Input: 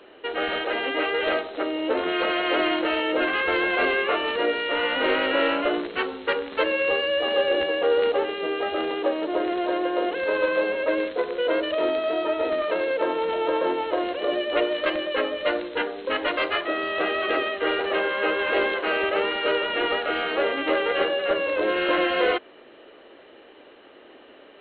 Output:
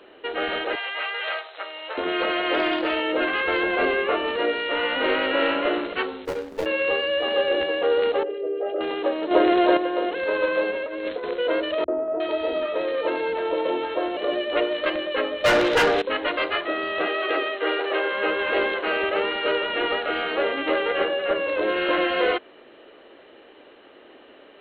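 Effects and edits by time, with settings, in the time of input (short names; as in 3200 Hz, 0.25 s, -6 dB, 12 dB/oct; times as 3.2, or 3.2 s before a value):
0.75–1.98 Bessel high-pass 980 Hz, order 4
2.54–2.94 Doppler distortion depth 0.1 ms
3.63–4.36 tilt shelf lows +3 dB
5.14–5.66 echo throw 0.27 s, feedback 10%, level -9.5 dB
6.25–6.66 median filter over 41 samples
8.23–8.81 formant sharpening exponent 2
9.31–9.77 gain +7.5 dB
10.71–11.34 negative-ratio compressor -29 dBFS
11.84–14.17 three bands offset in time lows, mids, highs 40/360 ms, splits 150/1200 Hz
15.44–16.02 overdrive pedal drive 28 dB, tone 3300 Hz, clips at -10.5 dBFS
17.07–18.13 steep high-pass 270 Hz
20.92–21.48 LPF 3700 Hz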